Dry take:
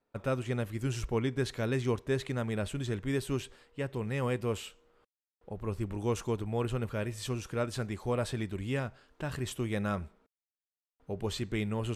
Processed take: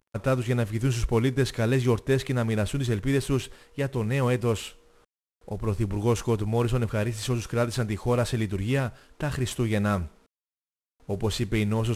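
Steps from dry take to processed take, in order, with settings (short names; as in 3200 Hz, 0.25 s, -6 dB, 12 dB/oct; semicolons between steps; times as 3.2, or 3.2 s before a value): CVSD 64 kbps; low shelf 110 Hz +5 dB; gain +6.5 dB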